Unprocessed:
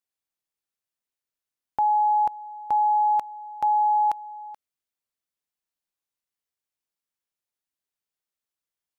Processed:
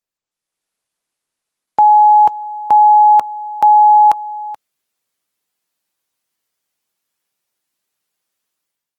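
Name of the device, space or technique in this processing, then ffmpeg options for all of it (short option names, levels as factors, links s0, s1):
video call: -af "highpass=110,dynaudnorm=f=130:g=7:m=5.01" -ar 48000 -c:a libopus -b:a 20k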